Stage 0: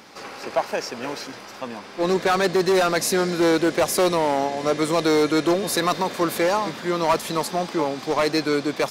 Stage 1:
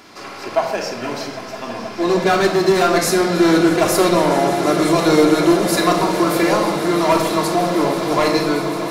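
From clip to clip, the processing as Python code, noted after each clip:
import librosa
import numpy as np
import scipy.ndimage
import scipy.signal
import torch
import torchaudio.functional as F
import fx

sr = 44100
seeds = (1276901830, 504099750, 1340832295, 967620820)

y = fx.fade_out_tail(x, sr, length_s=0.61)
y = fx.echo_swell(y, sr, ms=160, loudest=8, wet_db=-17.0)
y = fx.room_shoebox(y, sr, seeds[0], volume_m3=2000.0, walls='furnished', distance_m=3.1)
y = F.gain(torch.from_numpy(y), 1.0).numpy()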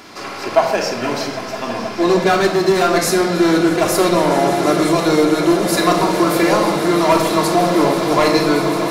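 y = fx.rider(x, sr, range_db=3, speed_s=0.5)
y = F.gain(torch.from_numpy(y), 1.5).numpy()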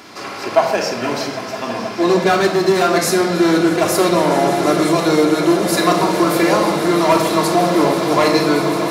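y = scipy.signal.sosfilt(scipy.signal.butter(2, 65.0, 'highpass', fs=sr, output='sos'), x)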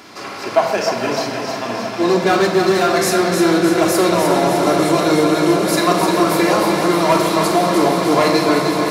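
y = fx.echo_feedback(x, sr, ms=304, feedback_pct=57, wet_db=-6)
y = F.gain(torch.from_numpy(y), -1.0).numpy()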